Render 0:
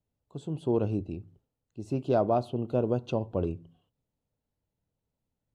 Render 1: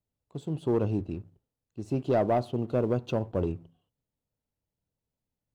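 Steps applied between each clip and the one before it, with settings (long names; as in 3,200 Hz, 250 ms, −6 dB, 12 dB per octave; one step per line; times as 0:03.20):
leveller curve on the samples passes 1
level −2 dB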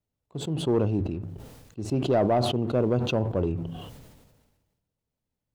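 high-shelf EQ 5,100 Hz −5 dB
level that may fall only so fast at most 41 dB per second
level +2 dB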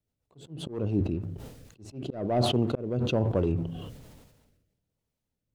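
volume swells 338 ms
rotating-speaker cabinet horn 7.5 Hz, later 1.2 Hz, at 0:00.87
level +2.5 dB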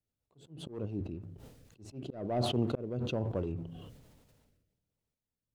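sample-and-hold tremolo
level −4 dB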